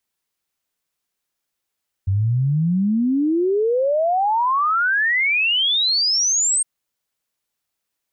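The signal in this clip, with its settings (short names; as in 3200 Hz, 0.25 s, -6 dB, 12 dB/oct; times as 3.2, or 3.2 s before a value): log sweep 93 Hz -> 8600 Hz 4.56 s -15.5 dBFS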